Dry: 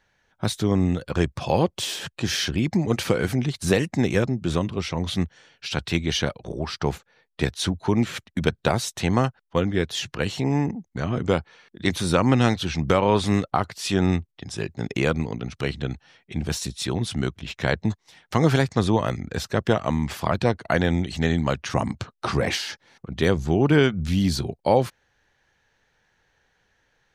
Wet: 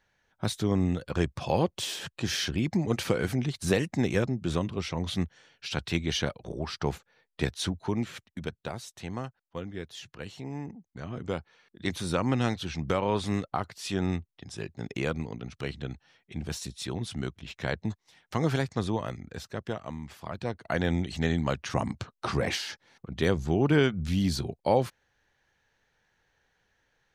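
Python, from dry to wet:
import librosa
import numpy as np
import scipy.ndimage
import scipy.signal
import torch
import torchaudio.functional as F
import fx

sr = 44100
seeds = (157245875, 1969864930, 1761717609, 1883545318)

y = fx.gain(x, sr, db=fx.line((7.57, -5.0), (8.66, -15.0), (10.53, -15.0), (11.86, -8.0), (18.73, -8.0), (20.2, -16.0), (20.9, -5.0)))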